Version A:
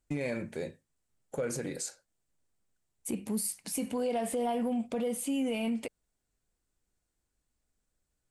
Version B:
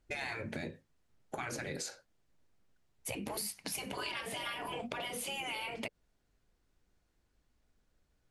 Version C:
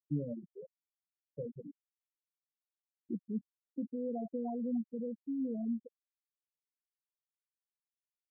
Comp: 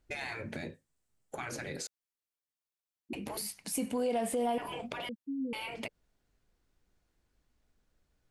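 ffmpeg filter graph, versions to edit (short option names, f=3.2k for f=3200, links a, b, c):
-filter_complex "[0:a]asplit=2[a][b];[2:a]asplit=2[c][d];[1:a]asplit=5[e][f][g][h][i];[e]atrim=end=0.742[j];[a]atrim=start=0.738:end=1.352[k];[f]atrim=start=1.348:end=1.872[l];[c]atrim=start=1.868:end=3.132[m];[g]atrim=start=3.128:end=3.642[n];[b]atrim=start=3.638:end=4.582[o];[h]atrim=start=4.578:end=5.092[p];[d]atrim=start=5.088:end=5.532[q];[i]atrim=start=5.528[r];[j][k]acrossfade=d=0.004:c1=hsin:c2=hsin[s];[s][l]acrossfade=d=0.004:c1=hsin:c2=hsin[t];[t][m]acrossfade=d=0.004:c1=hsin:c2=hsin[u];[u][n]acrossfade=d=0.004:c1=hsin:c2=hsin[v];[v][o]acrossfade=d=0.004:c1=hsin:c2=hsin[w];[w][p]acrossfade=d=0.004:c1=hsin:c2=hsin[x];[x][q]acrossfade=d=0.004:c1=hsin:c2=hsin[y];[y][r]acrossfade=d=0.004:c1=hsin:c2=hsin"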